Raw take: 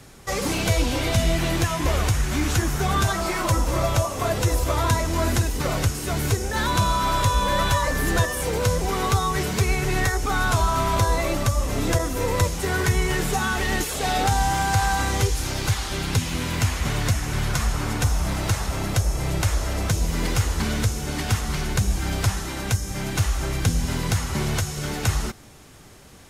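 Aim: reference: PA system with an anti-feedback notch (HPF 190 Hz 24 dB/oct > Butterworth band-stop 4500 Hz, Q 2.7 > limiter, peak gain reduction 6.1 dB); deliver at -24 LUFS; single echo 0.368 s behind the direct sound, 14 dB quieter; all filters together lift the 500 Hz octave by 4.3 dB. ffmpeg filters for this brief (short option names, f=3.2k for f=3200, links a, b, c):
-af "highpass=f=190:w=0.5412,highpass=f=190:w=1.3066,asuperstop=centerf=4500:order=8:qfactor=2.7,equalizer=f=500:t=o:g=5.5,aecho=1:1:368:0.2,volume=1.5dB,alimiter=limit=-13.5dB:level=0:latency=1"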